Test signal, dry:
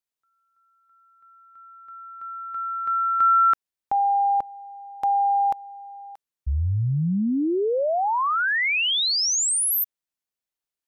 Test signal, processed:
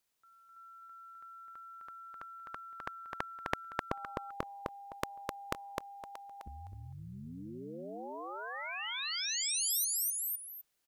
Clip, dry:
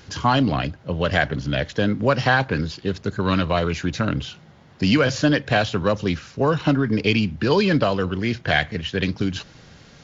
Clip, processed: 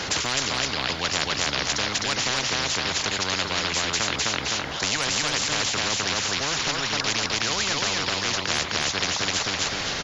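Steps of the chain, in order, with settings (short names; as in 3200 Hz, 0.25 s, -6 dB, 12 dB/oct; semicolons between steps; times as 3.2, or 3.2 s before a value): feedback echo 0.257 s, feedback 18%, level -3.5 dB; spectral compressor 10:1; gain -4 dB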